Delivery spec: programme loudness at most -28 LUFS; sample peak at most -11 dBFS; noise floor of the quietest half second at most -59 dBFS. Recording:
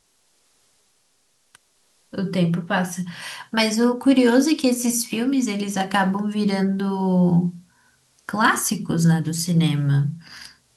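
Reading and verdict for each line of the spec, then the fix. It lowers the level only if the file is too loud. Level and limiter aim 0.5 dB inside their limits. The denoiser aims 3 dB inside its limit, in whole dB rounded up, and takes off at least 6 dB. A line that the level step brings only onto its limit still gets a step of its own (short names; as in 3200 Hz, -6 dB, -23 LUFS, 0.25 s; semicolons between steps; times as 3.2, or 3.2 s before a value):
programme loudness -20.5 LUFS: fail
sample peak -6.0 dBFS: fail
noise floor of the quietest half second -64 dBFS: OK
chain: gain -8 dB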